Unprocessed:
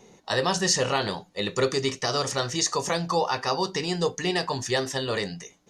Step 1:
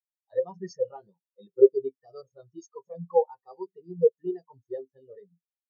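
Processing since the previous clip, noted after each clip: high-pass 52 Hz 6 dB/octave; spectral contrast expander 4:1; trim +5 dB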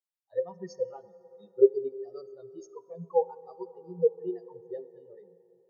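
plate-style reverb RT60 3.7 s, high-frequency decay 0.45×, DRR 16 dB; trim -3 dB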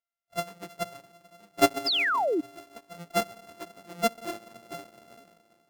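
sorted samples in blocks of 64 samples; painted sound fall, 1.86–2.41 s, 280–5300 Hz -23 dBFS; trim -2.5 dB

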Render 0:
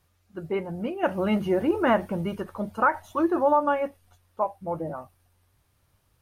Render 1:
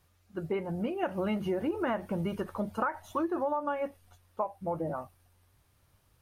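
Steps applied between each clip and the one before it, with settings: compression 6:1, threshold -28 dBFS, peak gain reduction 11.5 dB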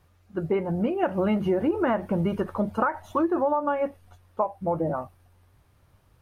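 treble shelf 2.7 kHz -9.5 dB; trim +7.5 dB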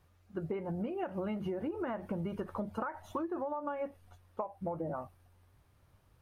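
compression, threshold -28 dBFS, peak gain reduction 9.5 dB; trim -5.5 dB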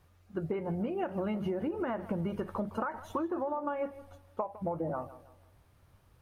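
tape echo 159 ms, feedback 39%, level -15 dB, low-pass 3.1 kHz; trim +3 dB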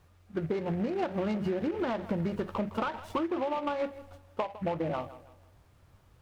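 delay time shaken by noise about 1.5 kHz, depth 0.038 ms; trim +2.5 dB

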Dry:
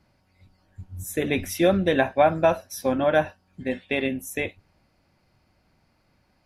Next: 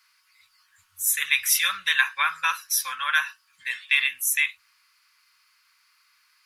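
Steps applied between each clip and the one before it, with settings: elliptic high-pass 1.1 kHz, stop band 40 dB; treble shelf 4.8 kHz +9 dB; trim +7 dB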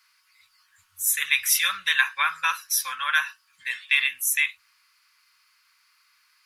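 no audible change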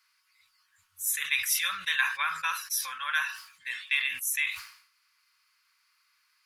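decay stretcher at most 93 dB/s; trim -6.5 dB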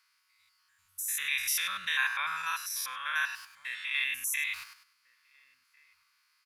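spectrogram pixelated in time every 100 ms; echo from a far wall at 240 m, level -23 dB

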